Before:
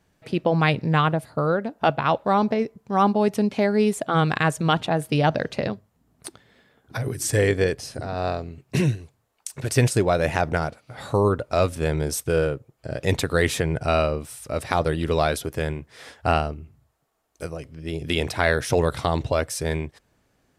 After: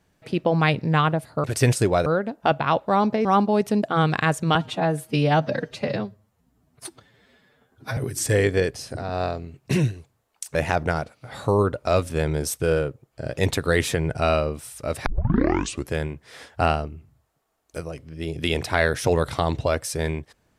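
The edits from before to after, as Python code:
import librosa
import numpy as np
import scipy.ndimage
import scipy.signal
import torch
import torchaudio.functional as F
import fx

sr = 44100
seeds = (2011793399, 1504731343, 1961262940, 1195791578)

y = fx.edit(x, sr, fx.cut(start_s=2.63, length_s=0.29),
    fx.cut(start_s=3.5, length_s=0.51),
    fx.stretch_span(start_s=4.73, length_s=2.28, factor=1.5),
    fx.move(start_s=9.59, length_s=0.62, to_s=1.44),
    fx.tape_start(start_s=14.72, length_s=0.86), tone=tone)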